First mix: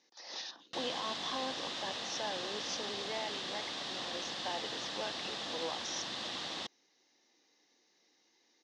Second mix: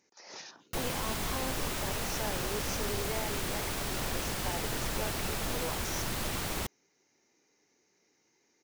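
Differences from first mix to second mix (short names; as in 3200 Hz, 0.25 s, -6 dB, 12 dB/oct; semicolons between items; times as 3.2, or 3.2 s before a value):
speech -5.5 dB; master: remove speaker cabinet 370–5200 Hz, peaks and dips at 410 Hz -10 dB, 620 Hz -5 dB, 930 Hz -5 dB, 1400 Hz -9 dB, 2300 Hz -9 dB, 3600 Hz +6 dB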